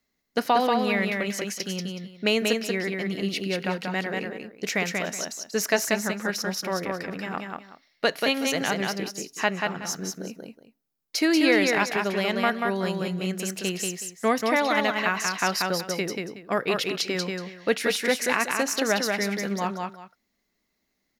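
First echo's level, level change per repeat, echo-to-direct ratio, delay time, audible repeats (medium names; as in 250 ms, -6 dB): -3.5 dB, -12.5 dB, -3.5 dB, 186 ms, 2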